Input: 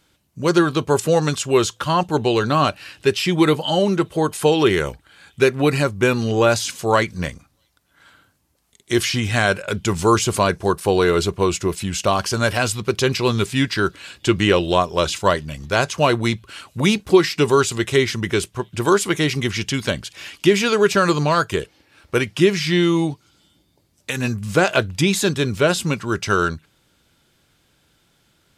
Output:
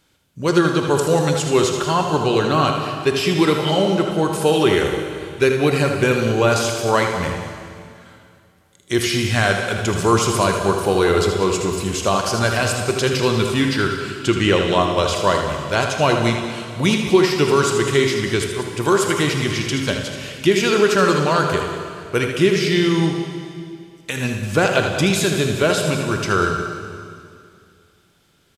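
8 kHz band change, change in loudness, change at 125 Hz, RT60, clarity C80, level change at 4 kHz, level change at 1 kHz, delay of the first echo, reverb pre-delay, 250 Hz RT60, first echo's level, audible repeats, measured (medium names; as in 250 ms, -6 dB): +1.0 dB, +1.0 dB, +1.0 dB, 2.3 s, 5.5 dB, +1.0 dB, +1.0 dB, 79 ms, 23 ms, 2.5 s, -7.5 dB, 2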